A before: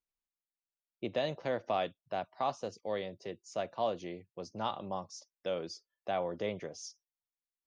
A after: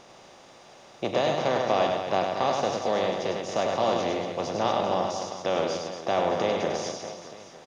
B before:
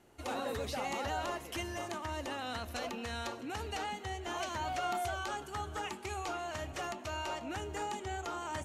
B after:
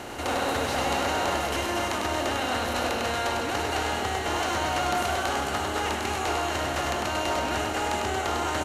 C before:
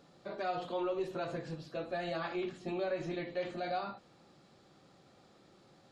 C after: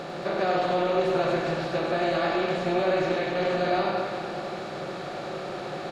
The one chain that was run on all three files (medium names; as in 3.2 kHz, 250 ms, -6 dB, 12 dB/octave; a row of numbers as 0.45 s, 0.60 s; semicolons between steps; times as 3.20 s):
spectral levelling over time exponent 0.4; on a send: reverse bouncing-ball echo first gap 100 ms, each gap 1.3×, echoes 5; on the sum: normalise loudness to -27 LUFS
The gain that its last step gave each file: +3.0 dB, +3.0 dB, +4.5 dB